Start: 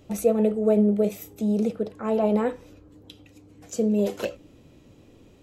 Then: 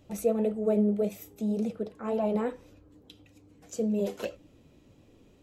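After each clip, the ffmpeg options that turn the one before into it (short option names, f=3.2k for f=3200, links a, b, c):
-af "flanger=delay=1.1:depth=3.8:regen=-66:speed=1.8:shape=sinusoidal,volume=-1.5dB"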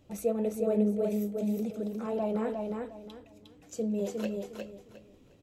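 -af "aecho=1:1:357|714|1071:0.631|0.158|0.0394,volume=-3dB"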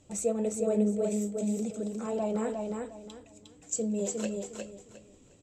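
-af "lowpass=f=7.6k:t=q:w=11"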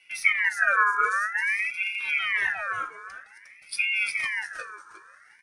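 -af "afftfilt=real='real(if(between(b,1,1008),(2*floor((b-1)/24)+1)*24-b,b),0)':imag='imag(if(between(b,1,1008),(2*floor((b-1)/24)+1)*24-b,b),0)*if(between(b,1,1008),-1,1)':win_size=2048:overlap=0.75,lowshelf=f=370:g=10.5,aeval=exprs='val(0)*sin(2*PI*1900*n/s+1900*0.3/0.51*sin(2*PI*0.51*n/s))':c=same"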